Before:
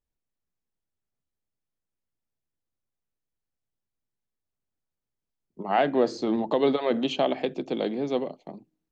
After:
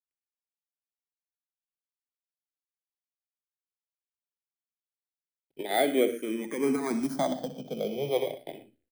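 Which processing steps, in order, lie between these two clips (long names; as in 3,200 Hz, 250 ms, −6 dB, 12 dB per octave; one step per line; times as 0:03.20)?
samples in bit-reversed order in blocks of 16 samples
0:06.08–0:06.58: low-shelf EQ 400 Hz −11.5 dB
in parallel at +1 dB: downward compressor 6 to 1, threshold −33 dBFS, peak gain reduction 15.5 dB
on the sum: log-companded quantiser 6 bits
on a send: multi-tap delay 63/104/119 ms −11.5/−17/−19 dB
on the sum: rotating-speaker cabinet horn 7.5 Hz, later 0.8 Hz, at 0:03.25
high-shelf EQ 3,500 Hz −7.5 dB
mains-hum notches 60/120/180/240 Hz
frequency shifter mixed with the dry sound −0.34 Hz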